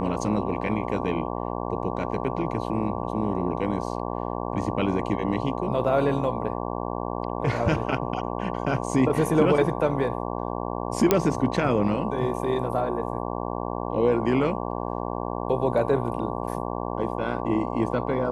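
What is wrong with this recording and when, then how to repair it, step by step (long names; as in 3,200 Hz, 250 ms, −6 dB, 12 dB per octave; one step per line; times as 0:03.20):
mains buzz 60 Hz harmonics 19 −30 dBFS
0:11.11: click −4 dBFS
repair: click removal
hum removal 60 Hz, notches 19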